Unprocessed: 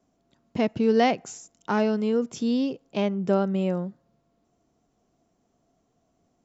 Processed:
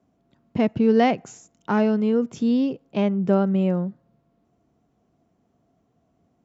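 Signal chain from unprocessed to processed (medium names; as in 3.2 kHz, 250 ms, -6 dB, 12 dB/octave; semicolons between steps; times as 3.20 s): dynamic bell 6.7 kHz, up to +5 dB, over -59 dBFS, Q 5.2; high-pass 61 Hz; tone controls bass +5 dB, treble -10 dB; trim +1.5 dB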